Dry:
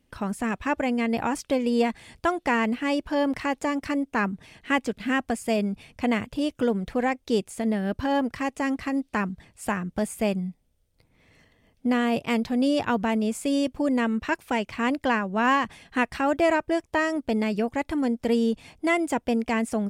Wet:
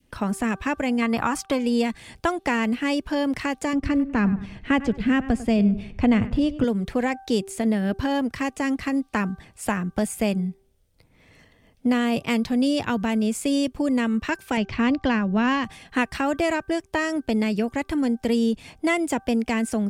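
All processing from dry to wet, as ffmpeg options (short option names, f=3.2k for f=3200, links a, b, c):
-filter_complex "[0:a]asettb=1/sr,asplit=3[a][b][c];[a]atrim=end=1.024[d];[b]atrim=start=1.02:end=1.59,asetpts=PTS-STARTPTS,afade=t=in:d=0.004:c=qsin,afade=t=out:st=0.566:d=0.004:c=qsin,agate=range=-9dB:threshold=-50dB:ratio=16:release=100:detection=peak,equalizer=f=1.2k:w=1.7:g=13[e];[c]atrim=start=1.586[f];[d][e]acrossfade=d=0.004:c1=hsin:c2=qsin[g];[g][f]acrossfade=d=0.004:c1=qsin:c2=hsin,asettb=1/sr,asplit=3[h][i][j];[h]atrim=end=3.734[k];[i]atrim=start=3.73:end=6.64,asetpts=PTS-STARTPTS,afade=t=in:d=0.004:c=qsin,afade=t=out:st=2.906:d=0.004:c=qsin,aemphasis=mode=reproduction:type=bsi,asplit=2[l][m];[m]adelay=98,lowpass=f=2.4k:p=1,volume=-15.5dB,asplit=2[n][o];[o]adelay=98,lowpass=f=2.4k:p=1,volume=0.35,asplit=2[p][q];[q]adelay=98,lowpass=f=2.4k:p=1,volume=0.35[r];[l][n][p][r]amix=inputs=4:normalize=0,atrim=end_sample=128331[s];[j]atrim=start=6.636[t];[k][s]acrossfade=d=0.004:c1=hsin:c2=qsin[u];[u][t]acrossfade=d=0.004:c1=qsin:c2=hsin,asettb=1/sr,asplit=3[v][w][x];[v]atrim=end=14.574[y];[w]atrim=start=14.57:end=15.64,asetpts=PTS-STARTPTS,afade=t=in:d=0.004:c=qsin,afade=t=out:st=1.066:d=0.004:c=qsin,lowpass=f=5.8k:w=0.5412,lowpass=f=5.8k:w=1.3066,lowshelf=f=210:g=9.5[z];[x]atrim=start=15.636[aa];[y][z]acrossfade=d=0.004:c1=hsin:c2=qsin[ab];[ab][aa]acrossfade=d=0.004:c1=qsin:c2=hsin,bandreject=f=389.3:t=h:w=4,bandreject=f=778.6:t=h:w=4,bandreject=f=1.1679k:t=h:w=4,bandreject=f=1.5572k:t=h:w=4,acrossover=split=210|3000[ac][ad][ae];[ad]acompressor=threshold=-27dB:ratio=2[af];[ac][af][ae]amix=inputs=3:normalize=0,adynamicequalizer=threshold=0.01:dfrequency=800:dqfactor=0.76:tfrequency=800:tqfactor=0.76:attack=5:release=100:ratio=0.375:range=2:mode=cutabove:tftype=bell,volume=4.5dB"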